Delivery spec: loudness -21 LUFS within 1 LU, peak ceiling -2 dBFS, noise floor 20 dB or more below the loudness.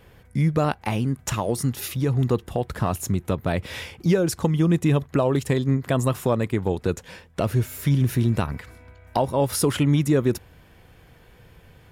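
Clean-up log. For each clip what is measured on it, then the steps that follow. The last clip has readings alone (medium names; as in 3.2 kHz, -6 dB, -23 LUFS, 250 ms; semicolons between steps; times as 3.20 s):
loudness -23.5 LUFS; peak level -10.0 dBFS; loudness target -21.0 LUFS
-> trim +2.5 dB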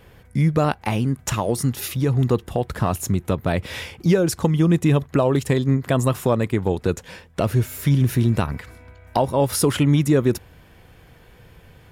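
loudness -21.0 LUFS; peak level -7.5 dBFS; noise floor -50 dBFS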